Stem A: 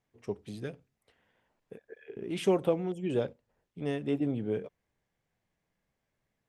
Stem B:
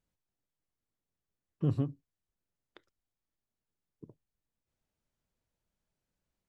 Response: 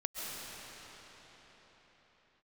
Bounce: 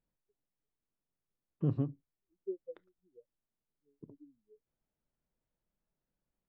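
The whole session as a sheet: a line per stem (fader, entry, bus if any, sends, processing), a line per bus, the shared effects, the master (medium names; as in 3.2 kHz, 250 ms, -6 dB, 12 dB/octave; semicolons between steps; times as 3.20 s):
-14.0 dB, 0.00 s, no send, spectral contrast expander 4:1
0.0 dB, 0.00 s, no send, peaking EQ 84 Hz -15 dB 0.4 oct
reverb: none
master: tape spacing loss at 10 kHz 33 dB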